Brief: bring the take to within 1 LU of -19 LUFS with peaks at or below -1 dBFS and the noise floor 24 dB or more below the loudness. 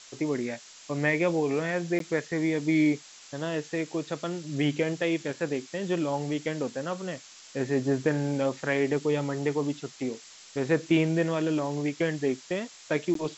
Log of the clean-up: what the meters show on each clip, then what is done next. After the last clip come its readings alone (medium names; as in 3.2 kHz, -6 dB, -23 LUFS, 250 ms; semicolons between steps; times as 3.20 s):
dropouts 2; longest dropout 13 ms; noise floor -50 dBFS; noise floor target -53 dBFS; loudness -29.0 LUFS; peak level -11.5 dBFS; loudness target -19.0 LUFS
-> interpolate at 1.99/13.14 s, 13 ms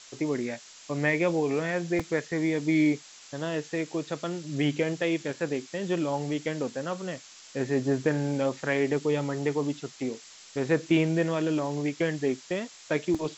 dropouts 0; noise floor -50 dBFS; noise floor target -53 dBFS
-> noise print and reduce 6 dB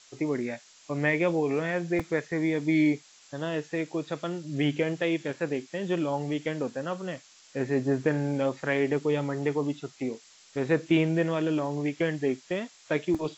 noise floor -56 dBFS; loudness -29.0 LUFS; peak level -11.5 dBFS; loudness target -19.0 LUFS
-> trim +10 dB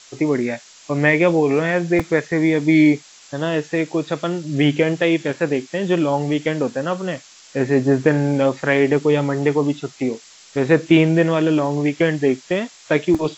loudness -19.0 LUFS; peak level -1.5 dBFS; noise floor -46 dBFS